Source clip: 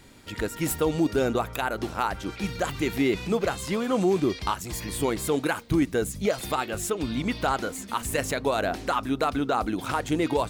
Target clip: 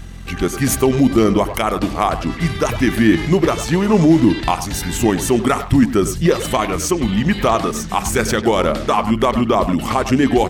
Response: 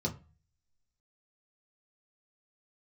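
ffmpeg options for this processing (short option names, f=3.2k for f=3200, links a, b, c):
-filter_complex "[0:a]asplit=2[a][b];[1:a]atrim=start_sample=2205,asetrate=74970,aresample=44100[c];[b][c]afir=irnorm=-1:irlink=0,volume=-21dB[d];[a][d]amix=inputs=2:normalize=0,aeval=exprs='val(0)+0.00794*(sin(2*PI*50*n/s)+sin(2*PI*2*50*n/s)/2+sin(2*PI*3*50*n/s)/3+sin(2*PI*4*50*n/s)/4+sin(2*PI*5*50*n/s)/5)':c=same,acontrast=20,asetrate=37084,aresample=44100,atempo=1.18921,asplit=2[e][f];[f]adelay=100,highpass=300,lowpass=3.4k,asoftclip=type=hard:threshold=-16.5dB,volume=-10dB[g];[e][g]amix=inputs=2:normalize=0,volume=5.5dB"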